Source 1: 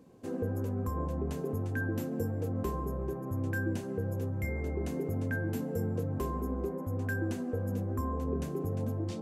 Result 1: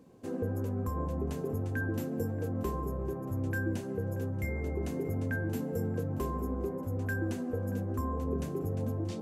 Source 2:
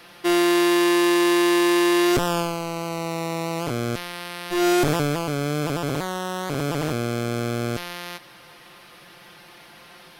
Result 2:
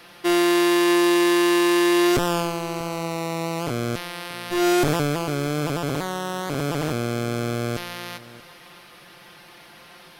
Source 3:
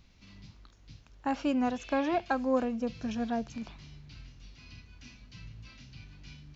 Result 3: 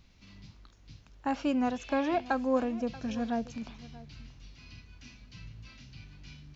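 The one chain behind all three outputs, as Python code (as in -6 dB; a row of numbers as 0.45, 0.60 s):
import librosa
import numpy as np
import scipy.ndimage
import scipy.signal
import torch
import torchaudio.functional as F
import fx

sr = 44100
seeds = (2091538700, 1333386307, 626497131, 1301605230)

y = x + 10.0 ** (-19.0 / 20.0) * np.pad(x, (int(632 * sr / 1000.0), 0))[:len(x)]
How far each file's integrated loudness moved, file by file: 0.0, 0.0, 0.0 LU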